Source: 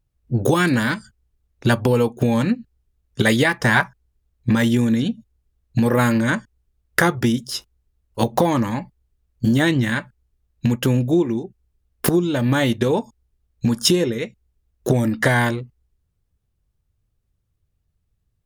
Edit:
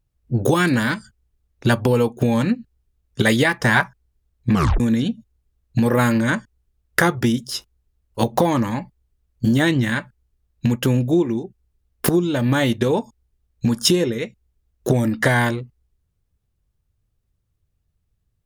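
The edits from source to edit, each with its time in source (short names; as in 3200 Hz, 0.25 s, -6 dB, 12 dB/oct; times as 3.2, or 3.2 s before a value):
4.53 tape stop 0.27 s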